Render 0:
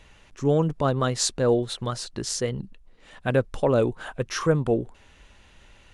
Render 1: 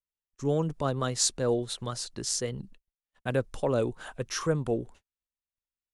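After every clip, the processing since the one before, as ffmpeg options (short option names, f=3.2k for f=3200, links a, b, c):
-filter_complex "[0:a]agate=range=-46dB:threshold=-43dB:ratio=16:detection=peak,acrossover=split=430|4700[a][b][c];[c]acontrast=73[d];[a][b][d]amix=inputs=3:normalize=0,volume=-6dB"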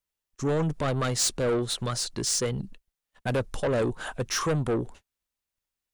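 -af "asoftclip=type=tanh:threshold=-29dB,volume=7.5dB"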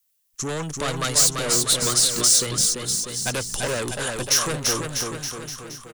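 -filter_complex "[0:a]crystalizer=i=5.5:c=0,acrossover=split=330|770[a][b][c];[a]acompressor=threshold=-31dB:ratio=4[d];[b]acompressor=threshold=-33dB:ratio=4[e];[c]acompressor=threshold=-15dB:ratio=4[f];[d][e][f]amix=inputs=3:normalize=0,aecho=1:1:340|646|921.4|1169|1392:0.631|0.398|0.251|0.158|0.1"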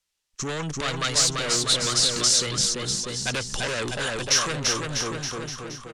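-filter_complex "[0:a]lowpass=5.3k,acrossover=split=1400[a][b];[a]alimiter=level_in=2.5dB:limit=-24dB:level=0:latency=1,volume=-2.5dB[c];[c][b]amix=inputs=2:normalize=0,volume=2.5dB"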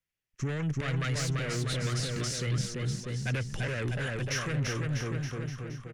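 -af "equalizer=f=125:t=o:w=1:g=11,equalizer=f=1k:t=o:w=1:g=-8,equalizer=f=2k:t=o:w=1:g=5,equalizer=f=4k:t=o:w=1:g=-10,equalizer=f=8k:t=o:w=1:g=-11,volume=-5.5dB"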